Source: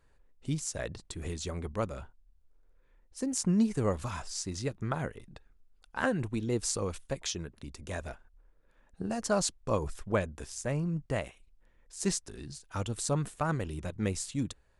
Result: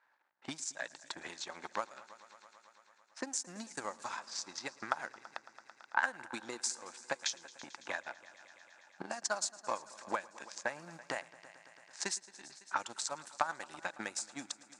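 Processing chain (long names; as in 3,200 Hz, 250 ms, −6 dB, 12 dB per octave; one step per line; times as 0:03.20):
mu-law and A-law mismatch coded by A
low-pass that shuts in the quiet parts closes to 1,500 Hz, open at −28.5 dBFS
spectral tilt +3 dB per octave
downward compressor 2.5 to 1, threshold −44 dBFS, peak gain reduction 15.5 dB
transient designer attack +9 dB, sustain −5 dB
loudspeaker in its box 320–8,100 Hz, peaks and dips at 440 Hz −10 dB, 860 Hz +8 dB, 1,600 Hz +6 dB, 3,000 Hz −5 dB
echo machine with several playback heads 111 ms, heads all three, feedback 61%, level −23.5 dB
one half of a high-frequency compander encoder only
level +1 dB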